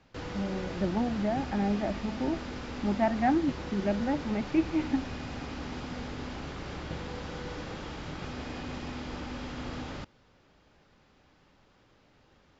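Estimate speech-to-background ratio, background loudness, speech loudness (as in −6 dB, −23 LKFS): 8.0 dB, −39.0 LKFS, −31.0 LKFS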